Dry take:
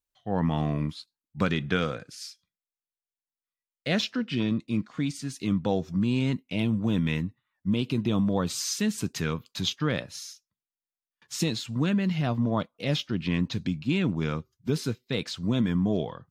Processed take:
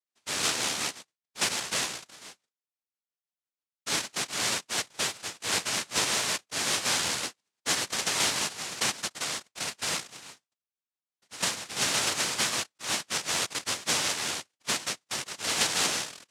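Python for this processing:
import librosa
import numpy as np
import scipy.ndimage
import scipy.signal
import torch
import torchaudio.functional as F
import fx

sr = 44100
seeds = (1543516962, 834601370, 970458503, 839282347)

y = fx.rotary(x, sr, hz=6.0)
y = fx.noise_vocoder(y, sr, seeds[0], bands=1)
y = F.gain(torch.from_numpy(y), -1.5).numpy()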